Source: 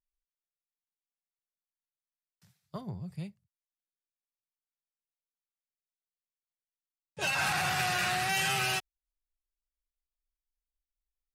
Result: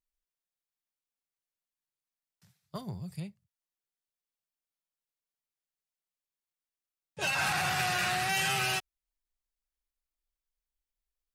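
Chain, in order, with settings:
0:02.75–0:03.20: high-shelf EQ 3,400 Hz +12 dB

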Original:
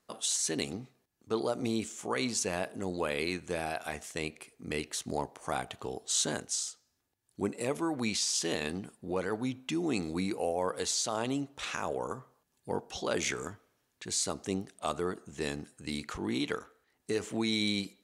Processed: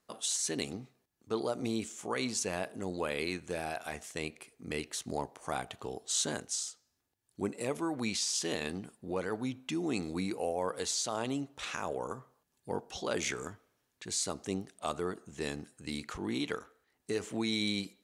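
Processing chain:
0:03.38–0:03.99: hard clipping −23 dBFS, distortion −36 dB
level −2 dB

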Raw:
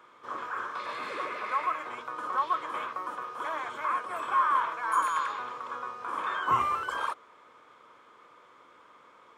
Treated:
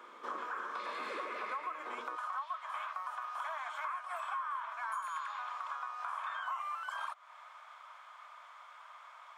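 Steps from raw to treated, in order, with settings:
elliptic high-pass filter 200 Hz, stop band 40 dB, from 0:02.15 650 Hz
downward compressor 6 to 1, threshold −41 dBFS, peak gain reduction 18.5 dB
level +3.5 dB

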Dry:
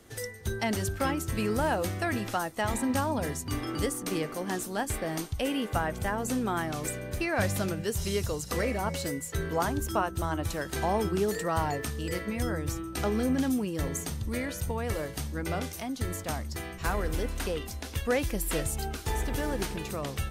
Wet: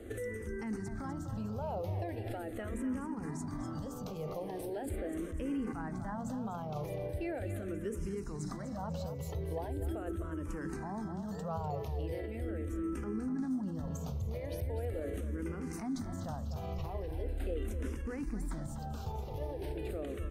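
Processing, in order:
tilt shelving filter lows +8.5 dB, about 1,300 Hz
mains-hum notches 60/120/180/240/300/360/420 Hz
in parallel at +2 dB: compressor whose output falls as the input rises −35 dBFS
on the sum: brickwall limiter −20 dBFS, peak gain reduction 10.5 dB
on a send: repeating echo 248 ms, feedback 43%, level −9.5 dB
on the sum: frequency shifter mixed with the dry sound −0.4 Hz
level −8.5 dB

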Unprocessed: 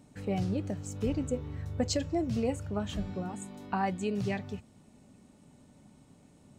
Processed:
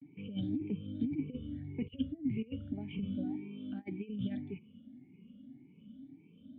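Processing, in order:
rippled gain that drifts along the octave scale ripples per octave 0.77, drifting +1.8 Hz, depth 23 dB
high-pass filter 97 Hz
high-shelf EQ 2,000 Hz +5.5 dB
compressor whose output falls as the input rises −28 dBFS, ratio −0.5
formant resonators in series i
pitch vibrato 0.34 Hz 57 cents
level +1 dB

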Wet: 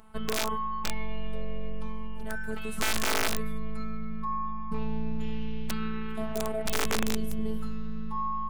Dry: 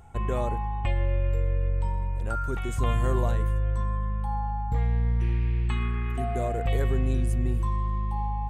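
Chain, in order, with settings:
phases set to zero 218 Hz
wrap-around overflow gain 18 dB
formants moved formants +3 semitones

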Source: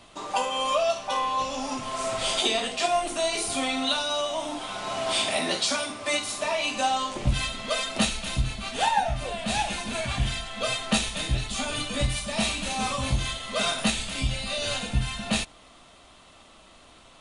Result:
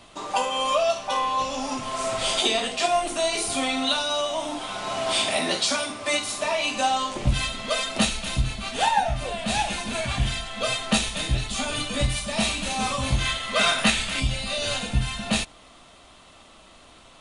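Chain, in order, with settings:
0:13.11–0:14.20: dynamic equaliser 1,800 Hz, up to +7 dB, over −42 dBFS, Q 0.79
level +2 dB

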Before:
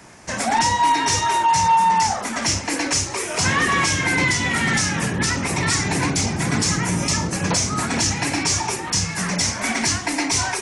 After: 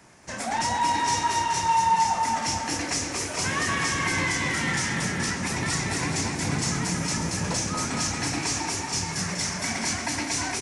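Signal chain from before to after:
bouncing-ball delay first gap 230 ms, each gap 0.85×, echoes 5
on a send at −11.5 dB: convolution reverb RT60 0.35 s, pre-delay 19 ms
on the sum: level −8.5 dB

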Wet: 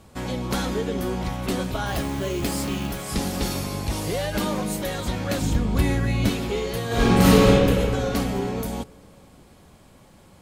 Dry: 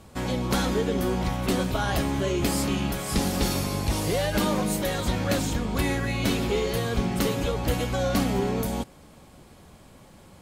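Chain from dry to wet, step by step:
0:01.86–0:03.02: floating-point word with a short mantissa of 2 bits
0:05.42–0:06.29: low-shelf EQ 250 Hz +9 dB
0:06.87–0:07.48: thrown reverb, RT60 2.4 s, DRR −11.5 dB
level −1 dB

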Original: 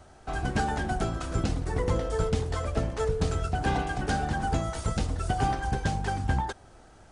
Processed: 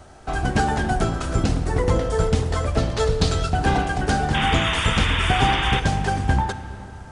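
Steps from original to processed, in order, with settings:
0:02.78–0:03.50: parametric band 4,100 Hz +10 dB 0.95 octaves
0:04.34–0:05.80: sound drawn into the spectrogram noise 850–3,700 Hz −32 dBFS
convolution reverb RT60 3.3 s, pre-delay 5 ms, DRR 11 dB
level +7 dB

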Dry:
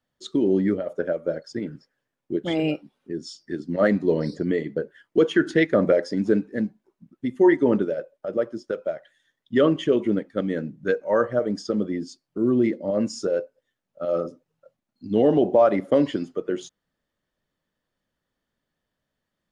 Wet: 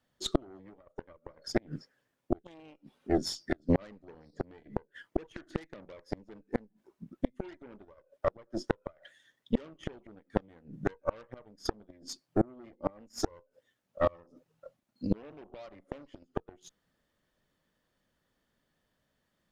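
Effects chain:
harmonic generator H 3 −38 dB, 8 −16 dB, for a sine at −7 dBFS
gate with flip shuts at −16 dBFS, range −35 dB
level +3.5 dB

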